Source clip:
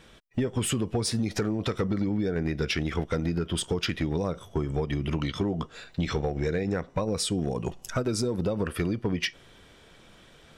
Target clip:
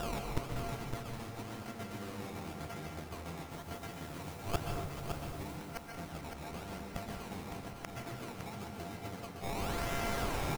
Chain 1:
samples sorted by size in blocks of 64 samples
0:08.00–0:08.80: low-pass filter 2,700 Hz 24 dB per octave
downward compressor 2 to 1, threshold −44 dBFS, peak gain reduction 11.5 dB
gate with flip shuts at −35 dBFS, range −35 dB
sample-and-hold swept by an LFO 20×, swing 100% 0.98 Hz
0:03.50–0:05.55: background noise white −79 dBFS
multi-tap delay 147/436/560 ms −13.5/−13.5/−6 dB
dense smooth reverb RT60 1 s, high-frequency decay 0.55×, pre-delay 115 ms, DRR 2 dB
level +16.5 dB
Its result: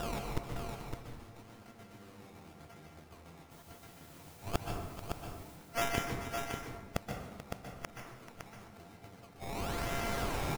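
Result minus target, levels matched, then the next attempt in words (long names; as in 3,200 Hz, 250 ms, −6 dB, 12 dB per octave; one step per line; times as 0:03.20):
downward compressor: peak gain reduction +11.5 dB
samples sorted by size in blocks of 64 samples
0:08.00–0:08.80: low-pass filter 2,700 Hz 24 dB per octave
gate with flip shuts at −35 dBFS, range −35 dB
sample-and-hold swept by an LFO 20×, swing 100% 0.98 Hz
0:03.50–0:05.55: background noise white −79 dBFS
multi-tap delay 147/436/560 ms −13.5/−13.5/−6 dB
dense smooth reverb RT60 1 s, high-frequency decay 0.55×, pre-delay 115 ms, DRR 2 dB
level +16.5 dB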